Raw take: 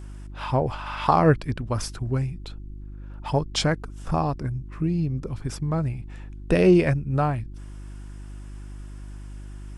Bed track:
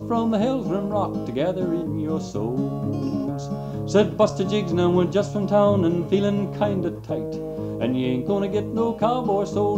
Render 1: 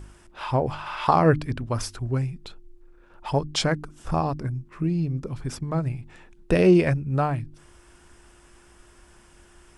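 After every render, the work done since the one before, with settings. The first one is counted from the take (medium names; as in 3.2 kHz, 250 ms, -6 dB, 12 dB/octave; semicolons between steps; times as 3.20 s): de-hum 50 Hz, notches 6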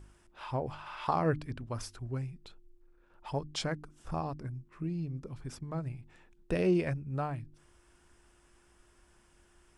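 trim -11 dB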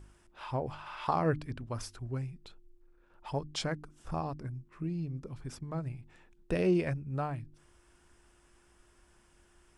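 no audible change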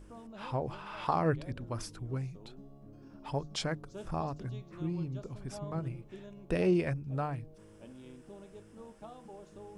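add bed track -28 dB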